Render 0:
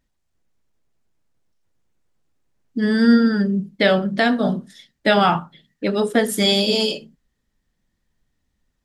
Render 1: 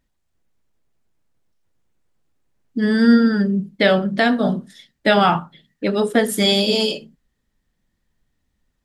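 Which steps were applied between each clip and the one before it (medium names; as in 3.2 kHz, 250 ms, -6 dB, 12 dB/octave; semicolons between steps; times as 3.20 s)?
peaking EQ 5.8 kHz -2 dB; trim +1 dB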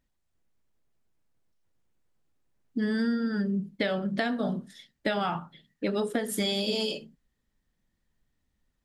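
compression 10:1, threshold -19 dBFS, peak gain reduction 11.5 dB; trim -5.5 dB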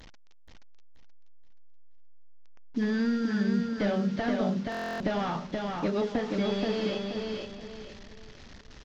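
one-bit delta coder 32 kbps, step -43.5 dBFS; on a send: feedback delay 477 ms, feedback 33%, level -3.5 dB; on the sum: buffer glitch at 4.70 s, samples 1024, times 12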